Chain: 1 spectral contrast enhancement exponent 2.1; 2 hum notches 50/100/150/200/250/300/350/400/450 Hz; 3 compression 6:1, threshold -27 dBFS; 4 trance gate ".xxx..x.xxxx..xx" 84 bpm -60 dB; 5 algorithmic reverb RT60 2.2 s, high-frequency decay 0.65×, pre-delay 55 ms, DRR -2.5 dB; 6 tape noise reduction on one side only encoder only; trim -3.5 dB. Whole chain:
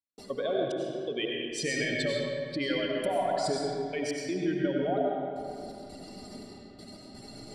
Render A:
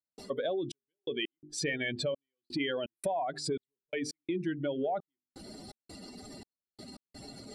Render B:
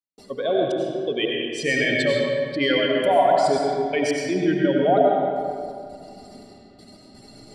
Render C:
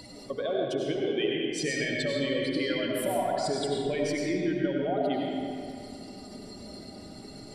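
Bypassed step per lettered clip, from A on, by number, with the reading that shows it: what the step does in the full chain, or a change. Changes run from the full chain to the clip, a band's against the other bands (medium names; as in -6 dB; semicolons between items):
5, loudness change -4.0 LU; 3, mean gain reduction 5.0 dB; 4, 250 Hz band +1.5 dB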